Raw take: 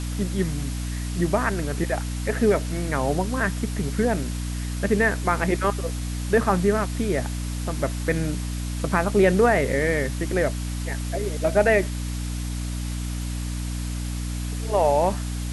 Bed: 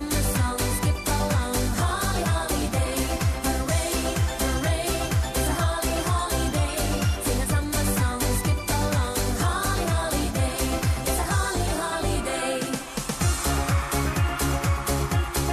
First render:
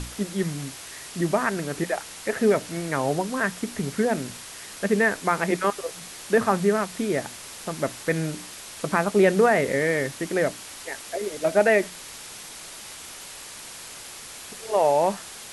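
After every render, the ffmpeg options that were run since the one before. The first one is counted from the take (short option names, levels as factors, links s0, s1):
-af "bandreject=f=60:t=h:w=6,bandreject=f=120:t=h:w=6,bandreject=f=180:t=h:w=6,bandreject=f=240:t=h:w=6,bandreject=f=300:t=h:w=6"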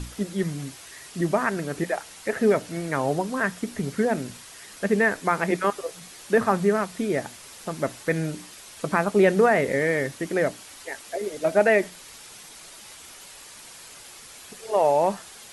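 -af "afftdn=nr=6:nf=-41"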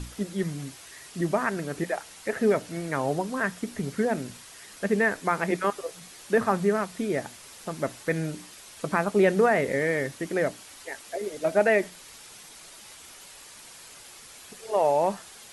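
-af "volume=0.75"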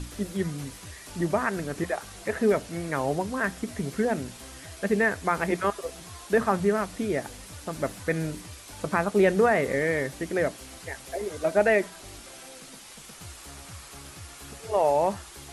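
-filter_complex "[1:a]volume=0.0794[s0];[0:a][s0]amix=inputs=2:normalize=0"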